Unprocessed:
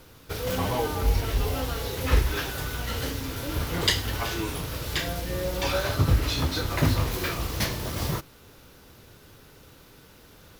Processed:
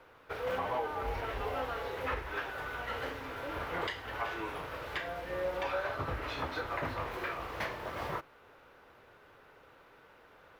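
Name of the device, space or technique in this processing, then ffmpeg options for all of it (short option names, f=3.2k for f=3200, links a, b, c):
DJ mixer with the lows and highs turned down: -filter_complex "[0:a]acrossover=split=450 2400:gain=0.141 1 0.0708[a][b][c];[a][b][c]amix=inputs=3:normalize=0,alimiter=level_in=0.5dB:limit=-24dB:level=0:latency=1:release=348,volume=-0.5dB"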